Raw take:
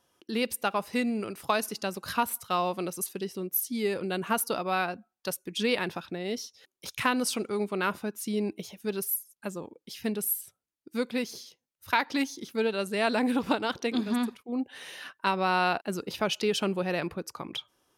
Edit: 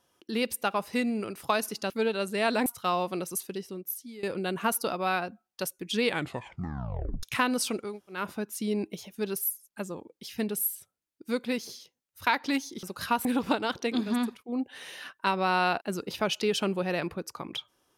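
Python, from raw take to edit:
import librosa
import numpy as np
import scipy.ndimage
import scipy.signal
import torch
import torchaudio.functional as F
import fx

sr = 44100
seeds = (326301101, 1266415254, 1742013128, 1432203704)

y = fx.edit(x, sr, fx.swap(start_s=1.9, length_s=0.42, other_s=12.49, other_length_s=0.76),
    fx.fade_out_to(start_s=3.05, length_s=0.84, floor_db=-18.5),
    fx.tape_stop(start_s=5.69, length_s=1.2),
    fx.room_tone_fill(start_s=7.55, length_s=0.3, crossfade_s=0.24), tone=tone)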